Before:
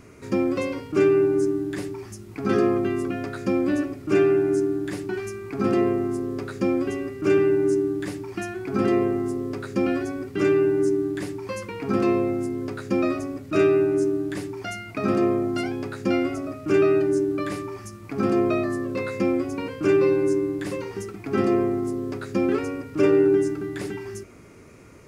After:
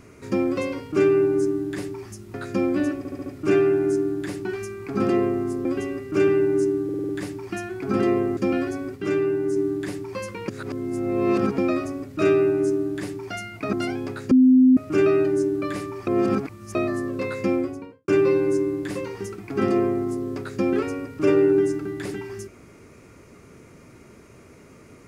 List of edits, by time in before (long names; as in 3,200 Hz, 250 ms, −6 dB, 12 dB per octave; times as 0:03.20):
0:02.34–0:03.26: remove
0:03.90: stutter 0.07 s, 5 plays
0:06.29–0:06.75: remove
0:07.94: stutter 0.05 s, 6 plays
0:09.22–0:09.71: remove
0:10.30–0:10.90: clip gain −3 dB
0:11.82–0:12.92: reverse
0:15.07–0:15.49: remove
0:16.07–0:16.53: beep over 257 Hz −10.5 dBFS
0:17.83–0:18.51: reverse
0:19.26–0:19.84: fade out and dull